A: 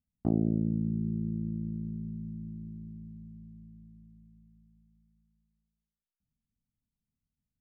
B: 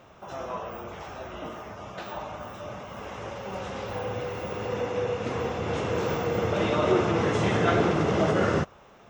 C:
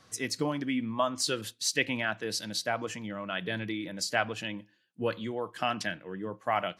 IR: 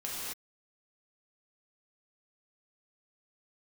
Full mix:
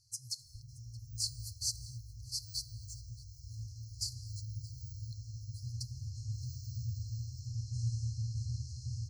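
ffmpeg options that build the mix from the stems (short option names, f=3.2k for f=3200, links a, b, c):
-filter_complex "[0:a]aphaser=in_gain=1:out_gain=1:delay=3.9:decay=0.68:speed=1.1:type=triangular,adelay=300,volume=-9dB[a];[1:a]highshelf=f=5k:g=-4.5,adelay=400,volume=-3dB,asplit=3[b][c][d];[c]volume=-6.5dB[e];[d]volume=-10.5dB[f];[2:a]volume=-5dB,asplit=3[g][h][i];[h]volume=-19dB[j];[i]volume=-21.5dB[k];[a][b]amix=inputs=2:normalize=0,acompressor=threshold=-37dB:ratio=6,volume=0dB[l];[3:a]atrim=start_sample=2205[m];[e][j]amix=inputs=2:normalize=0[n];[n][m]afir=irnorm=-1:irlink=0[o];[f][k]amix=inputs=2:normalize=0,aecho=0:1:624:1[p];[g][l][o][p]amix=inputs=4:normalize=0,afftfilt=real='re*(1-between(b*sr/4096,130,4100))':imag='im*(1-between(b*sr/4096,130,4100))':win_size=4096:overlap=0.75"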